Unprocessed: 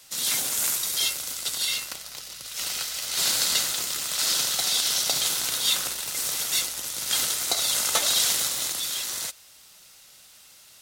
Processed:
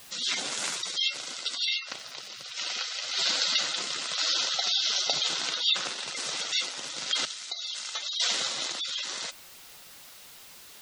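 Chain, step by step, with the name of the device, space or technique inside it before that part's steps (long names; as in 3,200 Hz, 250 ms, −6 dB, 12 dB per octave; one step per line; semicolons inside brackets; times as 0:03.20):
78 rpm shellac record (band-pass filter 160–5,000 Hz; surface crackle; white noise bed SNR 20 dB)
gate on every frequency bin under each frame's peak −15 dB strong
0:07.25–0:08.20: guitar amp tone stack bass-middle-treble 5-5-5
level +1.5 dB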